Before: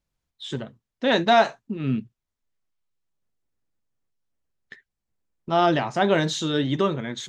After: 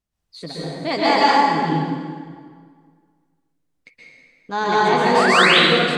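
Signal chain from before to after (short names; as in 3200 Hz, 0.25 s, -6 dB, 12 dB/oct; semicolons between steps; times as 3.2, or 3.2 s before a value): varispeed +22%; painted sound rise, 5.17–5.46, 990–4200 Hz -17 dBFS; plate-style reverb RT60 1.9 s, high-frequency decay 0.75×, pre-delay 0.11 s, DRR -8 dB; gain -3.5 dB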